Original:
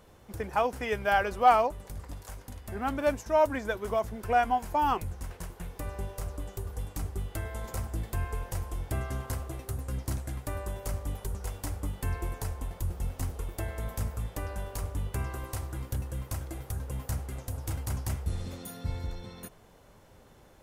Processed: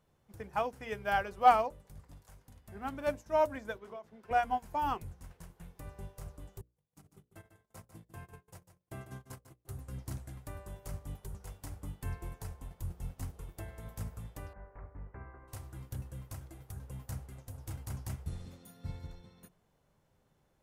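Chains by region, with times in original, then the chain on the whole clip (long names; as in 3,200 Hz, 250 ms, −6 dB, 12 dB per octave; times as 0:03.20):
0:03.77–0:04.31: three-way crossover with the lows and the highs turned down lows −18 dB, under 180 Hz, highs −12 dB, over 5,400 Hz + downward compressor 8 to 1, threshold −30 dBFS
0:06.61–0:09.67: high-pass filter 130 Hz + noise gate −39 dBFS, range −33 dB + single-tap delay 148 ms −7 dB
0:14.53–0:15.48: Butterworth low-pass 2,100 Hz 48 dB per octave + parametric band 130 Hz −9 dB 1.5 octaves
whole clip: parametric band 150 Hz +7.5 dB 0.65 octaves; mains-hum notches 60/120/180/240/300/360/420/480/540/600 Hz; expander for the loud parts 1.5 to 1, over −46 dBFS; level −1.5 dB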